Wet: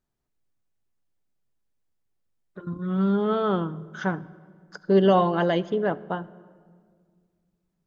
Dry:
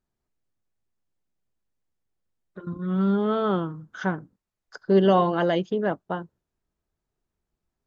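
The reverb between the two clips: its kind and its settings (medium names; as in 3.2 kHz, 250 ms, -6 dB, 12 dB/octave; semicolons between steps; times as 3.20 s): simulated room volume 3000 m³, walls mixed, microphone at 0.32 m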